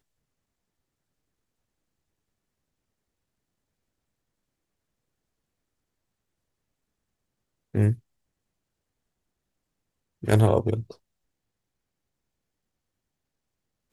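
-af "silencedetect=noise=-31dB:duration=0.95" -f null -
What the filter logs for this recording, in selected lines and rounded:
silence_start: 0.00
silence_end: 7.75 | silence_duration: 7.75
silence_start: 7.94
silence_end: 10.23 | silence_duration: 2.30
silence_start: 10.91
silence_end: 13.92 | silence_duration: 3.01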